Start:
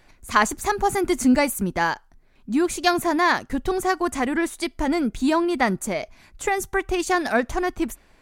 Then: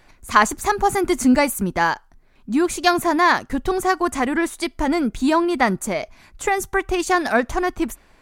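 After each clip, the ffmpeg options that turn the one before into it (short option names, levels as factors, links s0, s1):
-af "equalizer=f=1100:w=1.5:g=2.5,volume=1.26"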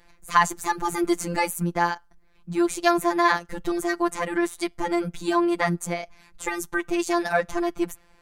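-af "afftfilt=real='hypot(re,im)*cos(PI*b)':imag='0':win_size=1024:overlap=0.75,volume=0.841"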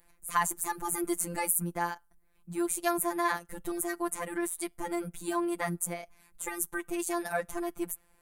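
-af "highshelf=f=7400:t=q:w=1.5:g=13,volume=0.355"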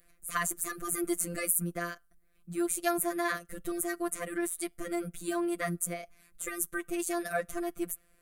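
-af "asuperstop=centerf=890:order=12:qfactor=2.9"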